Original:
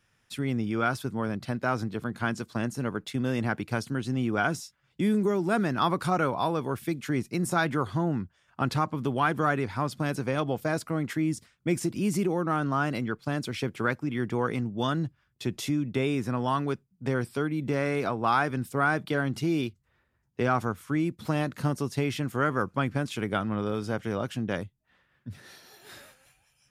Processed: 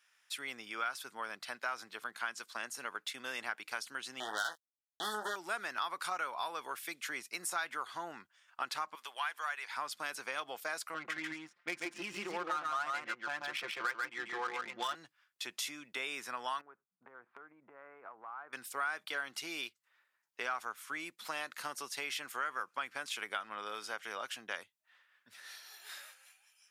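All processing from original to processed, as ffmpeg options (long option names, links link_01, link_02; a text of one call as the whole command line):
ffmpeg -i in.wav -filter_complex "[0:a]asettb=1/sr,asplit=3[link_01][link_02][link_03];[link_01]atrim=end=4.204[link_04];[link_02]atrim=start=4.2:end=5.36,asetpts=PTS-STARTPTS,afade=type=in:duration=0.004:curve=qsin,afade=type=out:start_time=1.156:duration=0.004:curve=qsin,acrusher=bits=3:mix=0:aa=0.5,asuperstop=centerf=2400:order=20:qfactor=2.1,asplit=2[link_05][link_06];[link_06]adelay=19,volume=-7dB[link_07];[link_05][link_07]amix=inputs=2:normalize=0,atrim=end_sample=51156[link_08];[link_03]atrim=start=5.356[link_09];[link_04][link_08]acrossfade=duration=0.004:curve1=hsin:curve2=qsin[link_10];[link_10][link_09]acrossfade=duration=0.004:curve1=qsin:curve2=hsin,asettb=1/sr,asplit=3[link_11][link_12][link_13];[link_11]atrim=end=8.954[link_14];[link_12]atrim=start=8.95:end=9.71,asetpts=PTS-STARTPTS,afade=type=in:duration=0.004:curve=qsin,afade=type=out:start_time=0.756:duration=0.004:curve=qsin,highpass=900,equalizer=frequency=1300:width=4.5:gain=-5.5[link_15];[link_13]atrim=start=9.706[link_16];[link_14][link_15]acrossfade=duration=0.004:curve1=hsin:curve2=qsin[link_17];[link_17][link_16]acrossfade=duration=0.004:curve1=qsin:curve2=hsin,asettb=1/sr,asplit=3[link_18][link_19][link_20];[link_18]atrim=end=10.944[link_21];[link_19]atrim=start=10.94:end=14.95,asetpts=PTS-STARTPTS,afade=type=in:duration=0.004:curve=qsin,afade=type=out:start_time=4.006:duration=0.004:curve=qsin,aecho=1:1:5.7:0.8,atrim=end_sample=176841,adynamicsmooth=sensitivity=5:basefreq=1300,aecho=1:1:140:0.668,atrim=end_sample=176841[link_22];[link_20]atrim=start=14.946[link_23];[link_21][link_22]acrossfade=duration=0.004:curve1=hsin:curve2=qsin[link_24];[link_24][link_23]acrossfade=duration=0.004:curve1=qsin:curve2=hsin,asettb=1/sr,asplit=3[link_25][link_26][link_27];[link_25]atrim=end=16.614[link_28];[link_26]atrim=start=16.61:end=18.53,asetpts=PTS-STARTPTS,afade=type=in:duration=0.004:curve=qsin,afade=type=out:start_time=1.916:duration=0.004:curve=qsin,lowpass=frequency=1400:width=0.5412,lowpass=frequency=1400:width=1.3066,acompressor=threshold=-36dB:ratio=16:attack=3.2:release=140:knee=1:detection=peak[link_29];[link_27]atrim=start=18.526[link_30];[link_28][link_29]acrossfade=duration=0.004:curve1=hsin:curve2=qsin[link_31];[link_31][link_30]acrossfade=duration=0.004:curve1=qsin:curve2=hsin,highpass=1200,acompressor=threshold=-36dB:ratio=3,volume=1dB" out.wav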